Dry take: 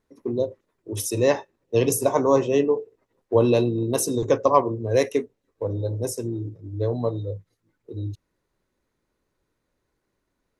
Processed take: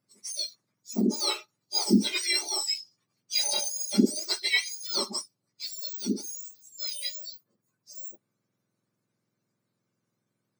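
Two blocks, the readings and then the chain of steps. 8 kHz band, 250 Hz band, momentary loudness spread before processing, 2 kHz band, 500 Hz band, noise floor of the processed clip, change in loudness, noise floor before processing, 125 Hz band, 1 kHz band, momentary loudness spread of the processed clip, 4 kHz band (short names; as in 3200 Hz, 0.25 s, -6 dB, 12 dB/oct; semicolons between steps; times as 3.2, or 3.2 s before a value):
+1.5 dB, -3.0 dB, 15 LU, +3.0 dB, -18.0 dB, -82 dBFS, -4.5 dB, -77 dBFS, under -10 dB, -15.0 dB, 15 LU, +12.0 dB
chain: spectrum mirrored in octaves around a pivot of 1500 Hz; gain -3 dB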